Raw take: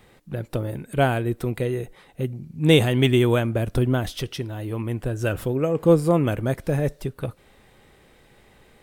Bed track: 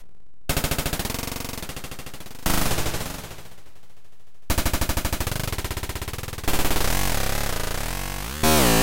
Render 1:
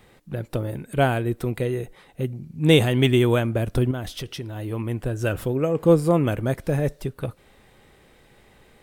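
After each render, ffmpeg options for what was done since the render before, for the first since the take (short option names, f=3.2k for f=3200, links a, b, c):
-filter_complex "[0:a]asettb=1/sr,asplit=3[a][b][c];[a]atrim=end=3.914[d];[b]atrim=start=3.91:end=4.56,asetpts=PTS-STARTPTS,afade=t=in:d=0.004:c=qsin,afade=t=out:st=0.646:d=0.004:c=qsin,acompressor=threshold=-30dB:ratio=2:attack=3.2:release=140:knee=1:detection=peak[e];[c]atrim=start=4.556[f];[d][e]acrossfade=d=0.004:c1=hsin:c2=qsin[g];[g][f]acrossfade=d=0.004:c1=qsin:c2=hsin"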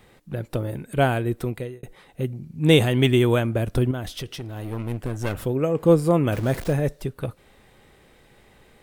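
-filter_complex "[0:a]asettb=1/sr,asplit=3[a][b][c];[a]atrim=end=4.294[d];[b]atrim=start=4.29:end=5.43,asetpts=PTS-STARTPTS,afade=t=in:d=0.004:c=qsin,afade=t=out:st=1.136:d=0.004:c=qsin,aeval=exprs='clip(val(0),-1,0.0237)':c=same[e];[c]atrim=start=5.426[f];[d][e]acrossfade=d=0.004:c1=hsin:c2=qsin[g];[g][f]acrossfade=d=0.004:c1=qsin:c2=hsin,asettb=1/sr,asplit=3[h][i][j];[h]atrim=end=6.324[k];[i]atrim=start=6.32:end=6.73,asetpts=PTS-STARTPTS,afade=t=in:d=0.004:c=qsin,afade=t=out:st=0.406:d=0.004:c=qsin,aeval=exprs='val(0)+0.5*0.0282*sgn(val(0))':c=same[l];[j]atrim=start=6.726[m];[k][l]acrossfade=d=0.004:c1=hsin:c2=qsin[n];[n][m]acrossfade=d=0.004:c1=qsin:c2=hsin,asplit=2[o][p];[o]atrim=end=1.83,asetpts=PTS-STARTPTS,afade=t=out:st=1.42:d=0.41[q];[p]atrim=start=1.83,asetpts=PTS-STARTPTS,afade=t=in:d=0.004:c=hsin[r];[q][r]concat=n=2:v=0:a=1"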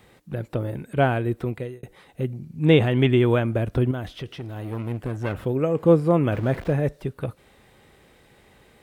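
-filter_complex "[0:a]acrossover=split=3300[a][b];[b]acompressor=threshold=-55dB:ratio=4:attack=1:release=60[c];[a][c]amix=inputs=2:normalize=0,highpass=41"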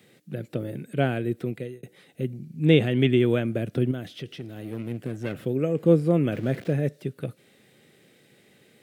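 -af "highpass=f=130:w=0.5412,highpass=f=130:w=1.3066,equalizer=f=970:w=1.5:g=-14.5"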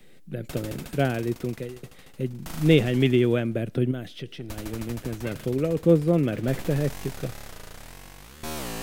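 -filter_complex "[1:a]volume=-16dB[a];[0:a][a]amix=inputs=2:normalize=0"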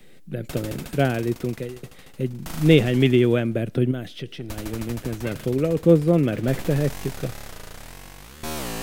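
-af "volume=3dB"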